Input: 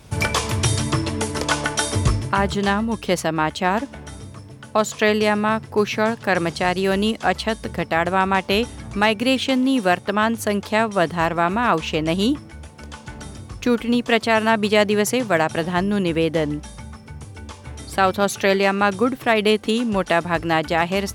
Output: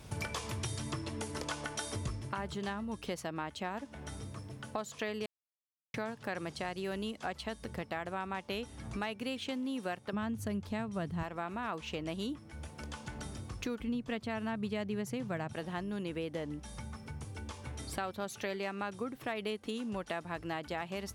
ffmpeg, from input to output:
-filter_complex "[0:a]asettb=1/sr,asplit=3[s0][s1][s2];[s0]atrim=end=10.134[s3];[s1]atrim=start=10.13:end=11.23,asetpts=PTS-STARTPTS,afade=t=in:d=0.004:c=qsin,afade=t=out:st=1.096:d=0.004:c=qsin,bass=f=250:g=15,treble=f=4000:g=0[s4];[s2]atrim=start=11.226[s5];[s3][s4]acrossfade=d=0.004:c1=hsin:c2=qsin[s6];[s6][s5]acrossfade=d=0.004:c1=qsin:c2=hsin,asettb=1/sr,asplit=3[s7][s8][s9];[s7]atrim=end=13.794[s10];[s8]atrim=start=13.79:end=15.53,asetpts=PTS-STARTPTS,afade=t=in:d=0.004:c=qsin,afade=t=out:st=1.736:d=0.004:c=qsin,bass=f=250:g=12,treble=f=4000:g=-3[s11];[s9]atrim=start=15.526[s12];[s10][s11]acrossfade=d=0.004:c1=hsin:c2=qsin[s13];[s13][s12]acrossfade=d=0.004:c1=qsin:c2=hsin,asplit=3[s14][s15][s16];[s14]atrim=end=5.26,asetpts=PTS-STARTPTS,afade=t=out:st=5.256:d=0.004:c=hsin[s17];[s15]atrim=start=5.26:end=5.94,asetpts=PTS-STARTPTS,volume=0[s18];[s16]atrim=start=5.94,asetpts=PTS-STARTPTS,afade=t=in:d=0.004:c=hsin[s19];[s17][s18][s19]concat=n=3:v=0:a=1,acompressor=threshold=0.02:ratio=3,volume=0.531"

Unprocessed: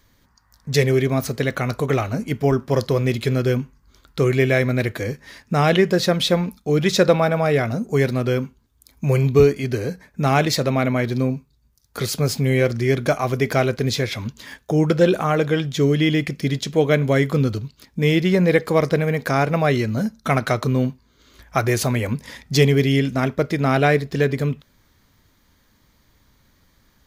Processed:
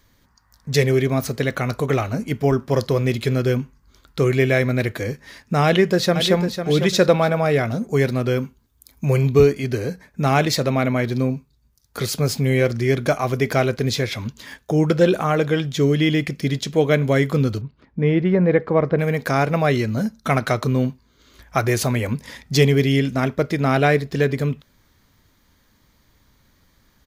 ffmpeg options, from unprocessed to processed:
-filter_complex "[0:a]asplit=2[s0][s1];[s1]afade=t=in:st=5.65:d=0.01,afade=t=out:st=6.37:d=0.01,aecho=0:1:500|1000|1500:0.375837|0.0939594|0.0234898[s2];[s0][s2]amix=inputs=2:normalize=0,asettb=1/sr,asplit=3[s3][s4][s5];[s3]atrim=end=8.374[s6];[s4]atrim=start=8.37:end=9.05,asetpts=PTS-STARTPTS,afade=t=in:d=0.004:c=qsin,afade=t=out:st=0.676:d=0.004:c=qsin,highshelf=f=12000:g=7.5[s7];[s5]atrim=start=9.046[s8];[s6][s7]acrossfade=d=0.004:c1=hsin:c2=qsin[s9];[s9][s8]acrossfade=d=0.004:c1=qsin:c2=hsin,asettb=1/sr,asplit=3[s10][s11][s12];[s10]atrim=end=17.614[s13];[s11]atrim=start=17.61:end=18.99,asetpts=PTS-STARTPTS,afade=t=in:d=0.004:c=qsin,afade=t=out:st=1.376:d=0.004:c=qsin,lowpass=1600[s14];[s12]atrim=start=18.986[s15];[s13][s14]acrossfade=d=0.004:c1=hsin:c2=qsin[s16];[s16][s15]acrossfade=d=0.004:c1=qsin:c2=hsin"

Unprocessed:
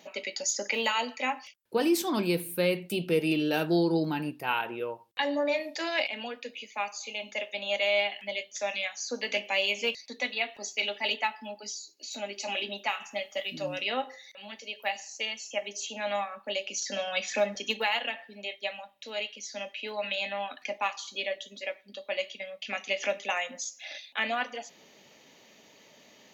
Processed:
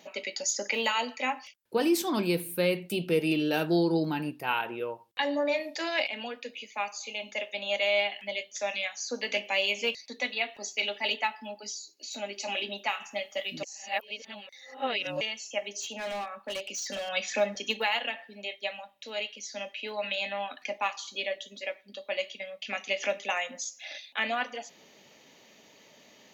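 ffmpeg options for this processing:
-filter_complex "[0:a]asettb=1/sr,asplit=3[s0][s1][s2];[s0]atrim=end=15.804[s3];[s1]atrim=start=15.8:end=17.09,asetpts=PTS-STARTPTS,afade=t=in:d=0.004:c=qsin,afade=t=out:st=1.286:d=0.004:c=qsin,asoftclip=type=hard:threshold=0.0266[s4];[s2]atrim=start=17.086[s5];[s3][s4]acrossfade=d=0.004:c1=hsin:c2=qsin[s6];[s6][s5]acrossfade=d=0.004:c1=qsin:c2=hsin,asplit=3[s7][s8][s9];[s7]atrim=end=13.632[s10];[s8]atrim=start=13.628:end=15.212,asetpts=PTS-STARTPTS,areverse[s11];[s9]atrim=start=15.208[s12];[s10][s11]acrossfade=d=0.004:c1=hsin:c2=hsin[s13];[s13][s12]acrossfade=d=0.004:c1=hsin:c2=hsin"

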